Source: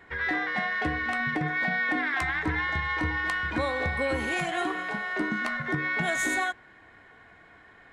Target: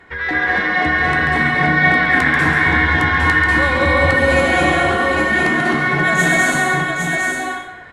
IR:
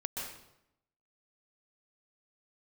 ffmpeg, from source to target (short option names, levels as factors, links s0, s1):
-filter_complex "[0:a]aecho=1:1:138|809:0.473|0.631[s0];[1:a]atrim=start_sample=2205,afade=t=out:st=0.38:d=0.01,atrim=end_sample=17199,asetrate=27783,aresample=44100[s1];[s0][s1]afir=irnorm=-1:irlink=0,volume=2.11"